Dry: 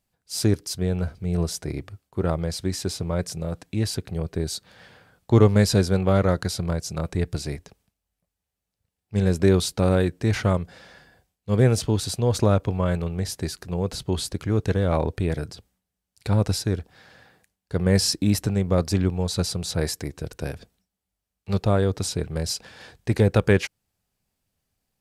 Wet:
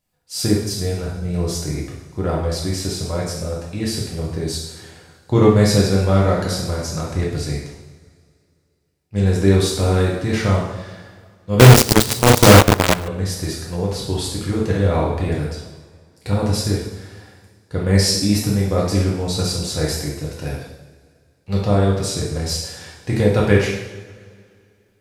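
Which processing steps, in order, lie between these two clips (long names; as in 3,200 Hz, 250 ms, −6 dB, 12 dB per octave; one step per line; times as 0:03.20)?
coupled-rooms reverb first 0.85 s, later 2.5 s, from −18 dB, DRR −4.5 dB
0:11.59–0:13.08: log-companded quantiser 2 bits
level −1 dB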